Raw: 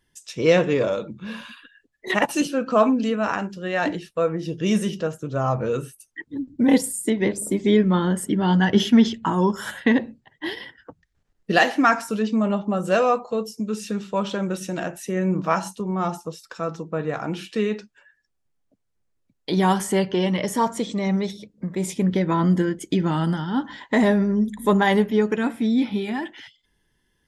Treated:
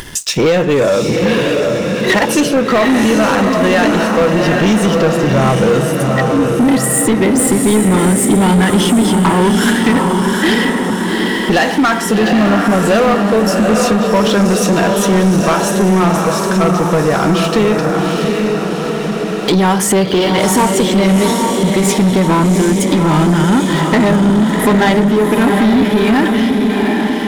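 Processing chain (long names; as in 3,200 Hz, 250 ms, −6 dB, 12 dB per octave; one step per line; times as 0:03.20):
downward compressor, threshold −24 dBFS, peak gain reduction 13 dB
feedback delay with all-pass diffusion 767 ms, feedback 52%, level −4 dB
upward compression, threshold −30 dBFS
leveller curve on the samples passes 3
level +7.5 dB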